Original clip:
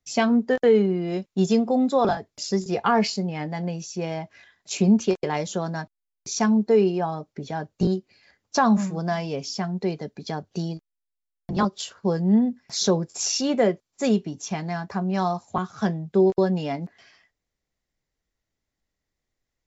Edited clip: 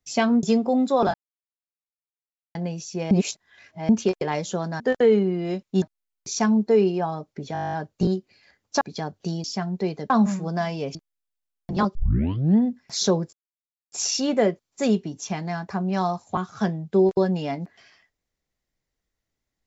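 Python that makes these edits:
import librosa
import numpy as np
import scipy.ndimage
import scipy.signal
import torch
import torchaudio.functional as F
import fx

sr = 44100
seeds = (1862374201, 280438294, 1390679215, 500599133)

y = fx.edit(x, sr, fx.move(start_s=0.43, length_s=1.02, to_s=5.82),
    fx.silence(start_s=2.16, length_s=1.41),
    fx.reverse_span(start_s=4.13, length_s=0.78),
    fx.stutter(start_s=7.53, slice_s=0.02, count=11),
    fx.swap(start_s=8.61, length_s=0.85, other_s=10.12, other_length_s=0.63),
    fx.tape_start(start_s=11.75, length_s=0.61),
    fx.insert_silence(at_s=13.13, length_s=0.59), tone=tone)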